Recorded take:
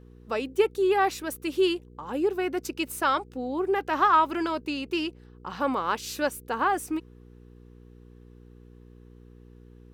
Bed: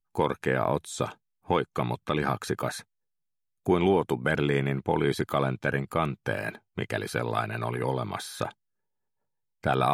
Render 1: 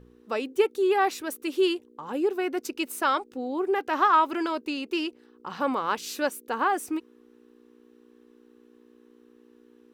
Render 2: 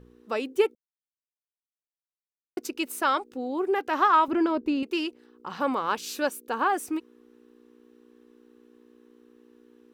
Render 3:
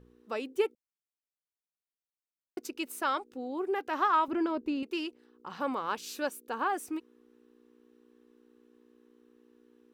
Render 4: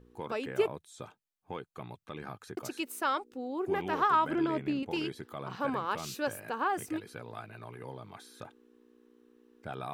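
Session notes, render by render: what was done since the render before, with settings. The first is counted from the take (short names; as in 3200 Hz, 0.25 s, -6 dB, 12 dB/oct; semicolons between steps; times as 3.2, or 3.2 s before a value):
de-hum 60 Hz, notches 3
0.75–2.57 mute; 4.28–4.83 tilt -3.5 dB/oct; 5.88–6.7 notch 2000 Hz, Q 14
gain -6 dB
add bed -15.5 dB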